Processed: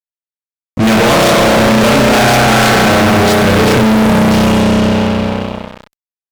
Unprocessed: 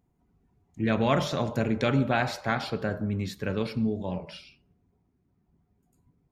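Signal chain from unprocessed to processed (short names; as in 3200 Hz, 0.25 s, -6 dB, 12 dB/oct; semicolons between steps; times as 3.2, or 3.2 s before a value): spring tank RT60 3.6 s, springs 32 ms, chirp 75 ms, DRR -3.5 dB; fuzz box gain 41 dB, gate -46 dBFS; gain +5.5 dB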